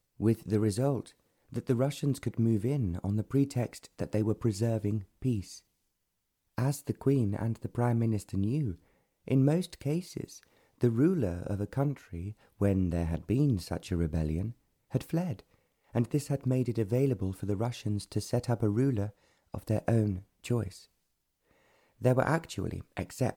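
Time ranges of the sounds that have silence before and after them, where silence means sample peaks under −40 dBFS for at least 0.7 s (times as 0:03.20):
0:06.58–0:20.77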